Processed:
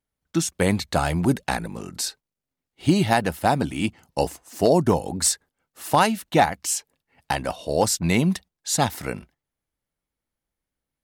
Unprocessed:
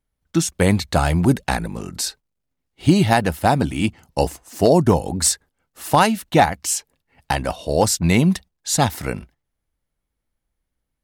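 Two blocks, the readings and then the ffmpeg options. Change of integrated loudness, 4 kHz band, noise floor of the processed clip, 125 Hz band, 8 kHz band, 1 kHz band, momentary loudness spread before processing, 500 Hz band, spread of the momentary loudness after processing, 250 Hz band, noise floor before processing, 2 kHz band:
−4.0 dB, −3.0 dB, below −85 dBFS, −6.0 dB, −3.0 dB, −3.0 dB, 10 LU, −3.5 dB, 9 LU, −4.0 dB, −79 dBFS, −3.0 dB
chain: -af "lowshelf=frequency=77:gain=-11,volume=-3dB"

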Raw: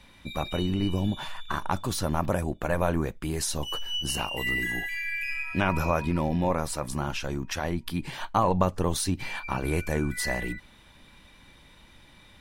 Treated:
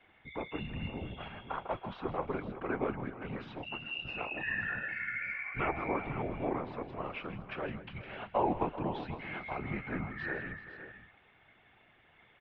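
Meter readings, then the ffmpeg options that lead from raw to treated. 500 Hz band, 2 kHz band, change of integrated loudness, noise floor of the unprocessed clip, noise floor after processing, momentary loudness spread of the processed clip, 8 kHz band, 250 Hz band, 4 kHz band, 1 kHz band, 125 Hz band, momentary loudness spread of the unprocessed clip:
−7.0 dB, −5.5 dB, −8.5 dB, −54 dBFS, −65 dBFS, 10 LU, below −40 dB, −9.5 dB, −14.5 dB, −7.0 dB, −12.5 dB, 6 LU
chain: -af "afftfilt=real='hypot(re,im)*cos(2*PI*random(0))':imag='hypot(re,im)*sin(2*PI*random(1))':win_size=512:overlap=0.75,highpass=frequency=310:width_type=q:width=0.5412,highpass=frequency=310:width_type=q:width=1.307,lowpass=frequency=3100:width_type=q:width=0.5176,lowpass=frequency=3100:width_type=q:width=0.7071,lowpass=frequency=3100:width_type=q:width=1.932,afreqshift=-200,aecho=1:1:160|384|488|514:0.188|0.158|0.119|0.224"

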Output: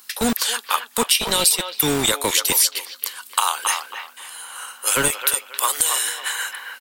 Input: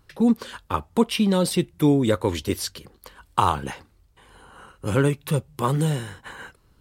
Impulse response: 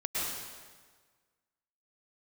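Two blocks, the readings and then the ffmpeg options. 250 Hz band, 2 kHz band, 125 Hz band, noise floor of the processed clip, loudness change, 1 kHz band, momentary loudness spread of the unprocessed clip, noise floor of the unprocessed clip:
−7.0 dB, +10.0 dB, −12.0 dB, −47 dBFS, +4.0 dB, +2.5 dB, 15 LU, −61 dBFS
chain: -filter_complex "[0:a]aderivative,acrossover=split=200[link_01][link_02];[link_02]acompressor=threshold=-41dB:ratio=4[link_03];[link_01][link_03]amix=inputs=2:normalize=0,aeval=exprs='val(0)+0.000631*(sin(2*PI*50*n/s)+sin(2*PI*2*50*n/s)/2+sin(2*PI*3*50*n/s)/3+sin(2*PI*4*50*n/s)/4+sin(2*PI*5*50*n/s)/5)':channel_layout=same,acrossover=split=460|3800[link_04][link_05][link_06];[link_04]acrusher=bits=7:mix=0:aa=0.000001[link_07];[link_05]aecho=1:1:272|544|816:0.501|0.135|0.0365[link_08];[link_07][link_08][link_06]amix=inputs=3:normalize=0,alimiter=level_in=26dB:limit=-1dB:release=50:level=0:latency=1,volume=-1dB"

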